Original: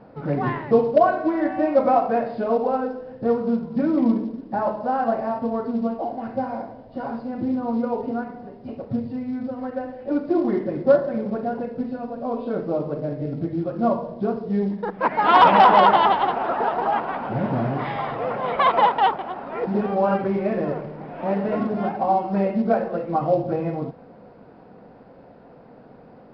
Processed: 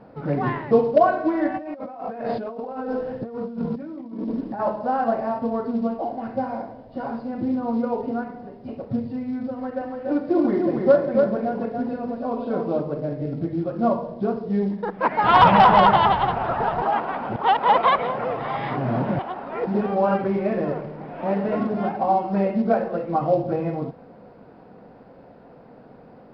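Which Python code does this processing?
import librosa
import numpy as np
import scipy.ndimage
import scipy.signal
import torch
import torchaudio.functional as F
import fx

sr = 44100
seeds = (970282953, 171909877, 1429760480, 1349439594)

y = fx.over_compress(x, sr, threshold_db=-31.0, ratio=-1.0, at=(1.54, 4.6))
y = fx.echo_single(y, sr, ms=285, db=-4.0, at=(9.53, 12.8))
y = fx.low_shelf_res(y, sr, hz=180.0, db=14.0, q=1.5, at=(15.24, 16.82))
y = fx.edit(y, sr, fx.reverse_span(start_s=17.36, length_s=1.83), tone=tone)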